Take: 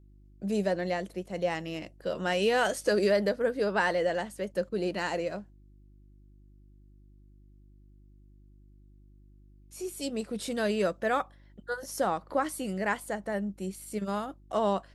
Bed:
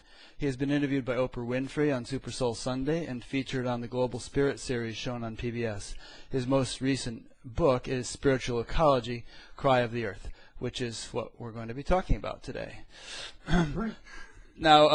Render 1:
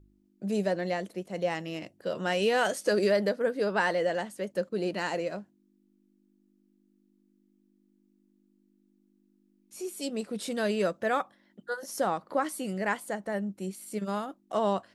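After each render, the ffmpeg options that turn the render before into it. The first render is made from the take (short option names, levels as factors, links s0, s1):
-af "bandreject=f=50:t=h:w=4,bandreject=f=100:t=h:w=4,bandreject=f=150:t=h:w=4"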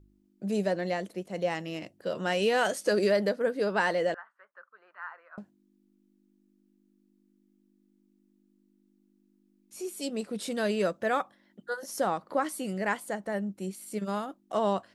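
-filter_complex "[0:a]asettb=1/sr,asplit=3[s0][s1][s2];[s0]atrim=end=4.144[s3];[s1]atrim=start=4.14:end=5.38,asetpts=PTS-STARTPTS,afade=t=in:d=0.004:c=qsin,afade=t=out:st=1.236:d=0.004:c=qsin,asuperpass=centerf=1300:order=4:qfactor=2.6[s4];[s2]atrim=start=5.376[s5];[s3][s4]acrossfade=d=0.004:c1=hsin:c2=qsin[s6];[s6][s5]acrossfade=d=0.004:c1=qsin:c2=hsin"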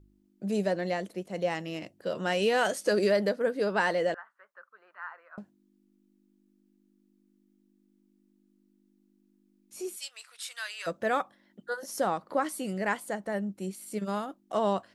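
-filter_complex "[0:a]asplit=3[s0][s1][s2];[s0]afade=t=out:st=9.95:d=0.02[s3];[s1]highpass=f=1200:w=0.5412,highpass=f=1200:w=1.3066,afade=t=in:st=9.95:d=0.02,afade=t=out:st=10.86:d=0.02[s4];[s2]afade=t=in:st=10.86:d=0.02[s5];[s3][s4][s5]amix=inputs=3:normalize=0"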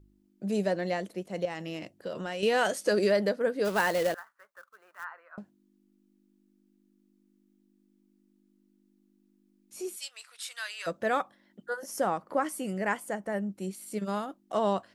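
-filter_complex "[0:a]asettb=1/sr,asplit=3[s0][s1][s2];[s0]atrim=end=1.454[s3];[s1]atrim=start=1.45:end=2.43,asetpts=PTS-STARTPTS,afade=t=in:d=0.004:c=qsin,afade=t=out:st=0.976:d=0.004:c=qsin,acompressor=threshold=0.0282:ratio=6:attack=3.2:release=140:knee=1:detection=peak[s4];[s2]atrim=start=2.426[s5];[s3][s4]acrossfade=d=0.004:c1=hsin:c2=qsin[s6];[s6][s5]acrossfade=d=0.004:c1=qsin:c2=hsin,asplit=3[s7][s8][s9];[s7]afade=t=out:st=3.64:d=0.02[s10];[s8]acrusher=bits=3:mode=log:mix=0:aa=0.000001,afade=t=in:st=3.64:d=0.02,afade=t=out:st=5.03:d=0.02[s11];[s9]afade=t=in:st=5.03:d=0.02[s12];[s10][s11][s12]amix=inputs=3:normalize=0,asettb=1/sr,asplit=3[s13][s14][s15];[s13]atrim=end=11.664[s16];[s14]atrim=start=11.66:end=13.5,asetpts=PTS-STARTPTS,afade=t=in:d=0.004:c=qsin,afade=t=out:st=1.836:d=0.004:c=qsin,equalizer=f=4000:t=o:w=0.39:g=-9.5[s17];[s15]atrim=start=13.496[s18];[s16][s17]acrossfade=d=0.004:c1=hsin:c2=qsin[s19];[s19][s18]acrossfade=d=0.004:c1=qsin:c2=hsin"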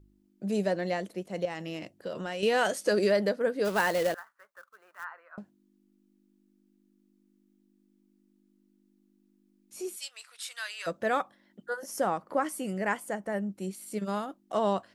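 -af anull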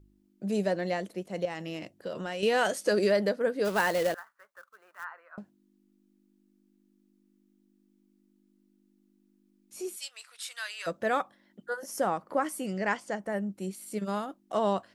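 -filter_complex "[0:a]asettb=1/sr,asplit=3[s0][s1][s2];[s0]atrim=end=12.664[s3];[s1]atrim=start=12.66:end=13.2,asetpts=PTS-STARTPTS,afade=t=in:d=0.004:c=qsin,afade=t=out:st=0.536:d=0.004:c=qsin,lowpass=f=5300:t=q:w=2.3[s4];[s2]atrim=start=13.196[s5];[s3][s4]acrossfade=d=0.004:c1=hsin:c2=qsin[s6];[s6][s5]acrossfade=d=0.004:c1=qsin:c2=hsin"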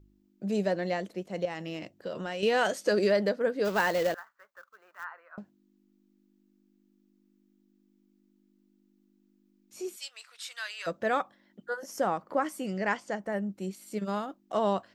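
-af "equalizer=f=10000:t=o:w=0.34:g=-13"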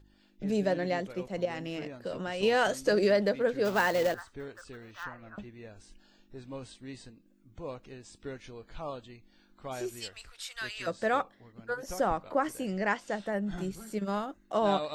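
-filter_complex "[1:a]volume=0.168[s0];[0:a][s0]amix=inputs=2:normalize=0"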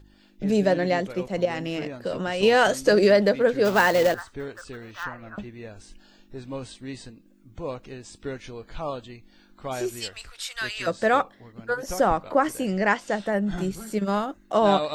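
-af "volume=2.37"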